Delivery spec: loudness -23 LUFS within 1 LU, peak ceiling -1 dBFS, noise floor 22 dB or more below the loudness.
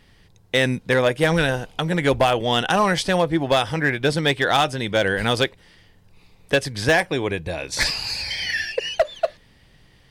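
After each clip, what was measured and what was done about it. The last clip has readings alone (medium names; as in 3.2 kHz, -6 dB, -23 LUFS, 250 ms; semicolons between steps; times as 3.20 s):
clipped samples 0.4%; clipping level -10.5 dBFS; loudness -21.0 LUFS; peak level -10.5 dBFS; loudness target -23.0 LUFS
-> clip repair -10.5 dBFS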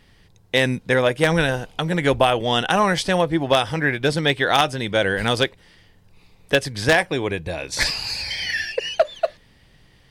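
clipped samples 0.0%; loudness -20.5 LUFS; peak level -1.5 dBFS; loudness target -23.0 LUFS
-> trim -2.5 dB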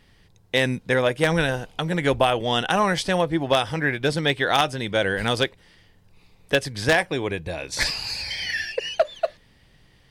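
loudness -23.0 LUFS; peak level -4.0 dBFS; noise floor -57 dBFS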